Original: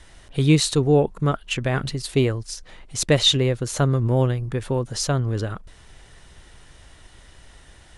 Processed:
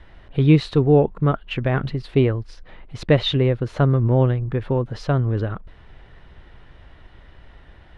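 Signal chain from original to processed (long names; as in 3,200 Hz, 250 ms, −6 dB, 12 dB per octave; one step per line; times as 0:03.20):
high-frequency loss of the air 380 metres
level +3 dB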